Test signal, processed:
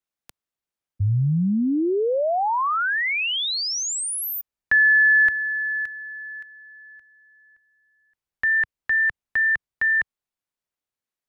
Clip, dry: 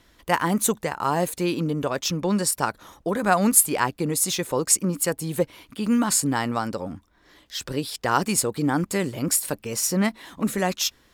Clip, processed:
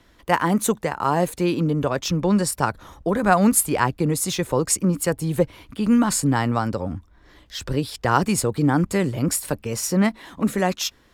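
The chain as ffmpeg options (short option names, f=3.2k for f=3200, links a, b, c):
-filter_complex "[0:a]highshelf=f=3.2k:g=-8.5,acrossover=split=110[a][b];[a]dynaudnorm=f=150:g=21:m=10.5dB[c];[c][b]amix=inputs=2:normalize=0,equalizer=f=8.1k:t=o:w=2.2:g=2,volume=3dB"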